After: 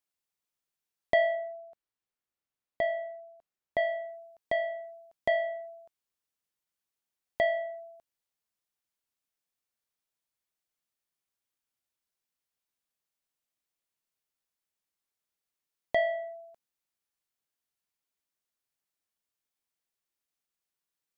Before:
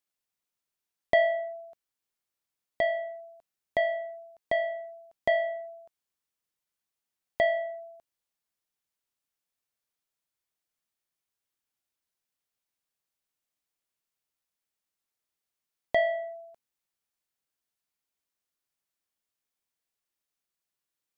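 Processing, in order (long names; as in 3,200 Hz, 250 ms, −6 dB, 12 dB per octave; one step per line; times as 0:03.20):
0:01.35–0:03.78: high-shelf EQ 3,900 Hz −9.5 dB
level −2 dB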